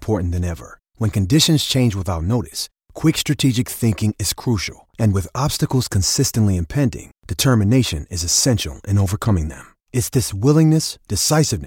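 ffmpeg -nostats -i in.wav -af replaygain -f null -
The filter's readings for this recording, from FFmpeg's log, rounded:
track_gain = -0.9 dB
track_peak = 0.549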